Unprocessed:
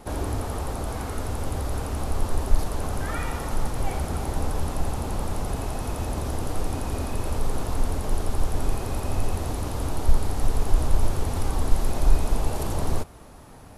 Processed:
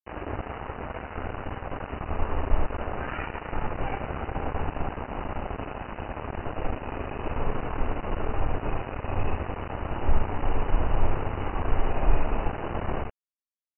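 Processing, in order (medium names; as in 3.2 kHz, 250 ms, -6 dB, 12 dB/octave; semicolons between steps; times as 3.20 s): early reflections 65 ms -8 dB, 79 ms -7 dB; crossover distortion -28.5 dBFS; brick-wall FIR low-pass 3 kHz; bass shelf 320 Hz -6.5 dB; trim +3 dB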